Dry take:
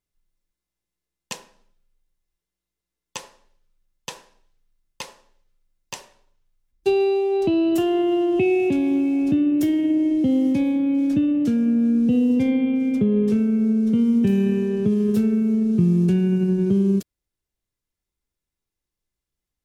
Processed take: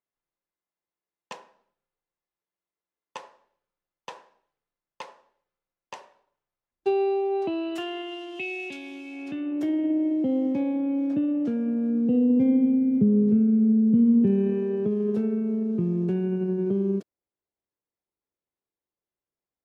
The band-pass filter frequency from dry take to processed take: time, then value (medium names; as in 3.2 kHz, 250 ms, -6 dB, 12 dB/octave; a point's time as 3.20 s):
band-pass filter, Q 0.83
7.31 s 840 Hz
8.19 s 3.6 kHz
9.04 s 3.6 kHz
9.73 s 660 Hz
11.83 s 660 Hz
12.87 s 190 Hz
13.94 s 190 Hz
14.59 s 600 Hz